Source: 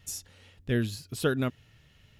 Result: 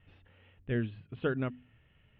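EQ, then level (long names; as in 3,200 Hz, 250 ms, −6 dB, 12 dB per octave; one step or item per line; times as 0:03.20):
Butterworth low-pass 3,100 Hz 48 dB per octave
high-frequency loss of the air 110 metres
mains-hum notches 50/100/150/200/250 Hz
−4.0 dB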